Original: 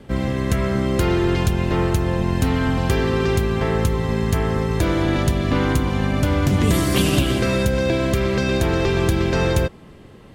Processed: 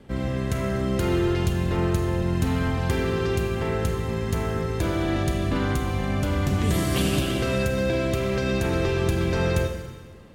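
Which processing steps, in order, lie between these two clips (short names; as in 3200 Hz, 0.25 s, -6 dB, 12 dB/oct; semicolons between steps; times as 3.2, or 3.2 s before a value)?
Schroeder reverb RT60 1.4 s, combs from 31 ms, DRR 4.5 dB; gain -6.5 dB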